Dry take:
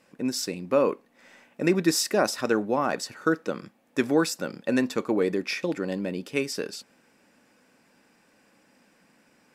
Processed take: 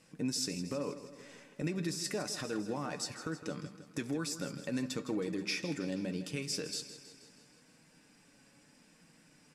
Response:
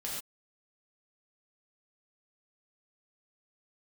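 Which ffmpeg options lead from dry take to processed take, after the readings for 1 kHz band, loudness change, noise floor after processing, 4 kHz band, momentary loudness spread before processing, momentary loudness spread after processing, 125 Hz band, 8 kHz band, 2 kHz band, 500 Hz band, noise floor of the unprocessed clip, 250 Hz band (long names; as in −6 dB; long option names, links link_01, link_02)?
−15.0 dB, −11.0 dB, −64 dBFS, −6.0 dB, 9 LU, 12 LU, −4.5 dB, −6.5 dB, −11.5 dB, −14.5 dB, −63 dBFS, −10.0 dB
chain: -filter_complex "[0:a]asplit=2[link_01][link_02];[link_02]acompressor=threshold=-33dB:ratio=6,volume=-2dB[link_03];[link_01][link_03]amix=inputs=2:normalize=0,flanger=delay=6.2:depth=1.1:regen=51:speed=0.77:shape=triangular,deesser=0.65,lowpass=frequency=11000:width=0.5412,lowpass=frequency=11000:width=1.3066,bass=frequency=250:gain=5,treble=frequency=4000:gain=3,alimiter=limit=-21dB:level=0:latency=1:release=188,equalizer=frequency=720:width=0.31:gain=-7,bandreject=frequency=197.6:width_type=h:width=4,bandreject=frequency=395.2:width_type=h:width=4,bandreject=frequency=592.8:width_type=h:width=4,bandreject=frequency=790.4:width_type=h:width=4,bandreject=frequency=988:width_type=h:width=4,bandreject=frequency=1185.6:width_type=h:width=4,bandreject=frequency=1383.2:width_type=h:width=4,bandreject=frequency=1580.8:width_type=h:width=4,bandreject=frequency=1778.4:width_type=h:width=4,bandreject=frequency=1976:width_type=h:width=4,bandreject=frequency=2173.6:width_type=h:width=4,bandreject=frequency=2371.2:width_type=h:width=4,bandreject=frequency=2568.8:width_type=h:width=4,bandreject=frequency=2766.4:width_type=h:width=4,bandreject=frequency=2964:width_type=h:width=4,bandreject=frequency=3161.6:width_type=h:width=4,bandreject=frequency=3359.2:width_type=h:width=4,bandreject=frequency=3556.8:width_type=h:width=4,bandreject=frequency=3754.4:width_type=h:width=4,bandreject=frequency=3952:width_type=h:width=4,bandreject=frequency=4149.6:width_type=h:width=4,bandreject=frequency=4347.2:width_type=h:width=4,bandreject=frequency=4544.8:width_type=h:width=4,bandreject=frequency=4742.4:width_type=h:width=4,bandreject=frequency=4940:width_type=h:width=4,bandreject=frequency=5137.6:width_type=h:width=4,bandreject=frequency=5335.2:width_type=h:width=4,bandreject=frequency=5532.8:width_type=h:width=4,bandreject=frequency=5730.4:width_type=h:width=4,bandreject=frequency=5928:width_type=h:width=4,bandreject=frequency=6125.6:width_type=h:width=4,bandreject=frequency=6323.2:width_type=h:width=4,bandreject=frequency=6520.8:width_type=h:width=4,bandreject=frequency=6718.4:width_type=h:width=4,bandreject=frequency=6916:width_type=h:width=4,bandreject=frequency=7113.6:width_type=h:width=4,bandreject=frequency=7311.2:width_type=h:width=4,bandreject=frequency=7508.8:width_type=h:width=4,bandreject=frequency=7706.4:width_type=h:width=4,asplit=2[link_04][link_05];[link_05]aecho=0:1:160|320|480|640|800|960:0.224|0.132|0.0779|0.046|0.0271|0.016[link_06];[link_04][link_06]amix=inputs=2:normalize=0"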